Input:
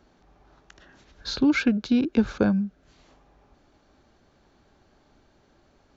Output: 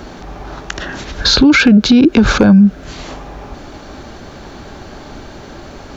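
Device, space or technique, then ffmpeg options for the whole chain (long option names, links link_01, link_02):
loud club master: -af "acompressor=threshold=-27dB:ratio=2,asoftclip=type=hard:threshold=-18.5dB,alimiter=level_in=29.5dB:limit=-1dB:release=50:level=0:latency=1,volume=-1dB"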